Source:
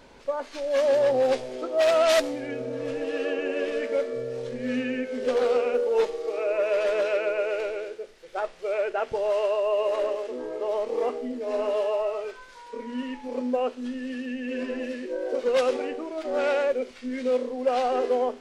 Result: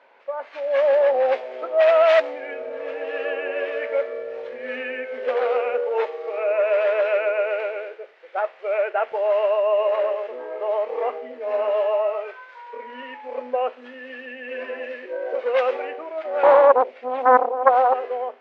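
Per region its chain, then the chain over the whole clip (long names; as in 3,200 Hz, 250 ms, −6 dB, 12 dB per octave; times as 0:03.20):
0:16.43–0:17.94: low shelf with overshoot 800 Hz +9 dB, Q 1.5 + highs frequency-modulated by the lows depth 0.81 ms
whole clip: automatic gain control gain up to 6 dB; Chebyshev band-pass filter 610–2,300 Hz, order 2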